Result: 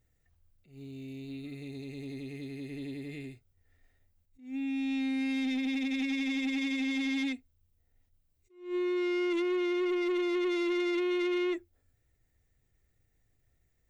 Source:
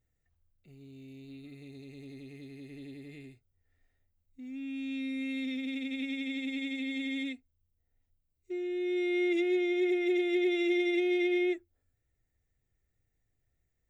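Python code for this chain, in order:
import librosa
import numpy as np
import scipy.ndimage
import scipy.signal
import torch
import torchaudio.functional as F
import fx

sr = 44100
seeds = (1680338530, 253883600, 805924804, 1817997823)

p1 = fx.over_compress(x, sr, threshold_db=-34.0, ratio=-1.0)
p2 = x + (p1 * 10.0 ** (-2.0 / 20.0))
p3 = 10.0 ** (-26.5 / 20.0) * np.tanh(p2 / 10.0 ** (-26.5 / 20.0))
y = fx.attack_slew(p3, sr, db_per_s=140.0)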